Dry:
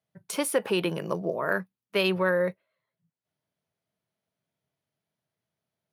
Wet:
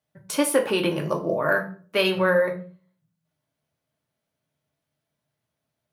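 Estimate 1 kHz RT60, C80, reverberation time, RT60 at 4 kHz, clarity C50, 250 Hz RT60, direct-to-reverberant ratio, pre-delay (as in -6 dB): 0.40 s, 16.5 dB, 0.40 s, 0.35 s, 11.5 dB, 0.55 s, 2.0 dB, 3 ms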